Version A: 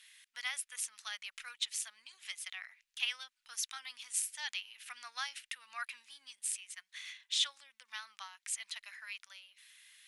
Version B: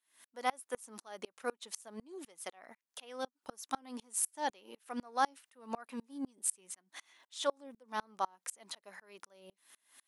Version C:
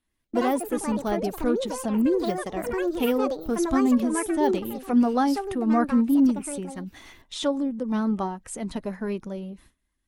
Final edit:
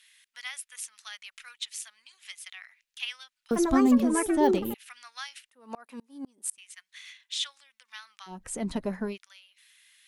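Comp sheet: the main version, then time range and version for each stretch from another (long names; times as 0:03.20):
A
0:03.51–0:04.74: punch in from C
0:05.49–0:06.58: punch in from B
0:08.34–0:09.10: punch in from C, crossfade 0.16 s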